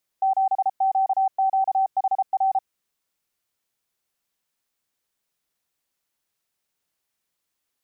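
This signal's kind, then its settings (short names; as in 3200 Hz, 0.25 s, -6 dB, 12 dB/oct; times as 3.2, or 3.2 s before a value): Morse "7QQHR" 33 wpm 770 Hz -17 dBFS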